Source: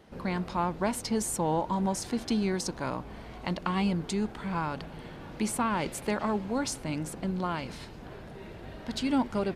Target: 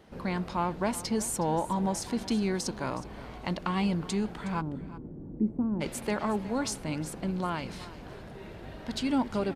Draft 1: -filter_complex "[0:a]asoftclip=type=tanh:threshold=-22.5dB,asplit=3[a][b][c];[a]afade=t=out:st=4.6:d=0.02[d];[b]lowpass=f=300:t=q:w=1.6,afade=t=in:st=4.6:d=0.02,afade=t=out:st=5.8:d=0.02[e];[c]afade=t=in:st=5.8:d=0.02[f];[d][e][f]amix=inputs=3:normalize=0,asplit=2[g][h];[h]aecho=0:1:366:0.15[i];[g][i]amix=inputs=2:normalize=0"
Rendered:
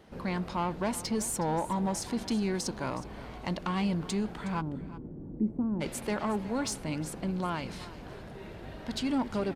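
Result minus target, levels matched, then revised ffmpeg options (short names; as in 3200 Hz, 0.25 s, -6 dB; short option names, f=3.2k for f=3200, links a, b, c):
soft clip: distortion +12 dB
-filter_complex "[0:a]asoftclip=type=tanh:threshold=-14.5dB,asplit=3[a][b][c];[a]afade=t=out:st=4.6:d=0.02[d];[b]lowpass=f=300:t=q:w=1.6,afade=t=in:st=4.6:d=0.02,afade=t=out:st=5.8:d=0.02[e];[c]afade=t=in:st=5.8:d=0.02[f];[d][e][f]amix=inputs=3:normalize=0,asplit=2[g][h];[h]aecho=0:1:366:0.15[i];[g][i]amix=inputs=2:normalize=0"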